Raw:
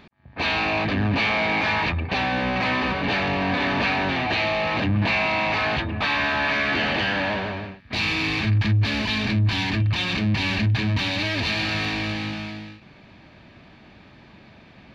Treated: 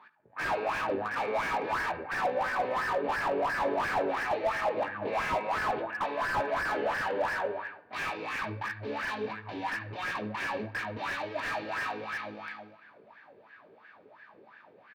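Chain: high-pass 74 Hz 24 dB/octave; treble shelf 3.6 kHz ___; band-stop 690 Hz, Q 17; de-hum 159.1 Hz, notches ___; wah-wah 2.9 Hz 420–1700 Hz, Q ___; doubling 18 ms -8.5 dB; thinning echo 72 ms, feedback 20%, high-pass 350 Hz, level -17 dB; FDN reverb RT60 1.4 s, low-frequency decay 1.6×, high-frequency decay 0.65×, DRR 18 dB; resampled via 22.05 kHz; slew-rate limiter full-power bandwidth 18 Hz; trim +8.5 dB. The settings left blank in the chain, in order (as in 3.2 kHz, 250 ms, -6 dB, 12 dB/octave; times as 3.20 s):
+6 dB, 5, 9.3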